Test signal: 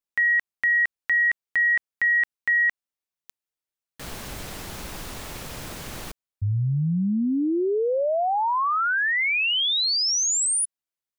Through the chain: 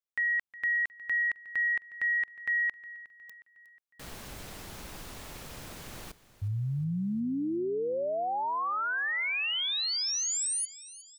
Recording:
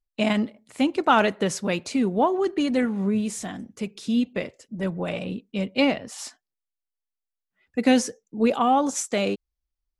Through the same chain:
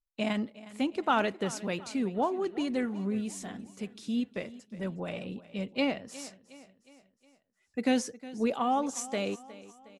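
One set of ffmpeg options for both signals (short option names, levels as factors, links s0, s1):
-af "aecho=1:1:362|724|1086|1448:0.126|0.0629|0.0315|0.0157,volume=0.398"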